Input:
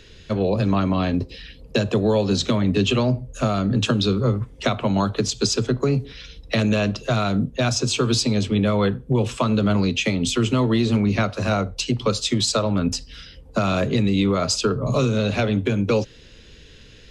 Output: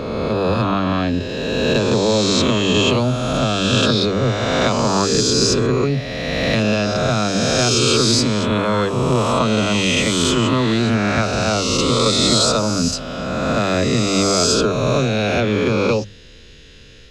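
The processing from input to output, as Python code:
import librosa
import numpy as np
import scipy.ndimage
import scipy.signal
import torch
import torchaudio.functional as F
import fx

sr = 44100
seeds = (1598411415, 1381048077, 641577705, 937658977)

y = fx.spec_swells(x, sr, rise_s=2.44)
y = fx.hum_notches(y, sr, base_hz=50, count=4)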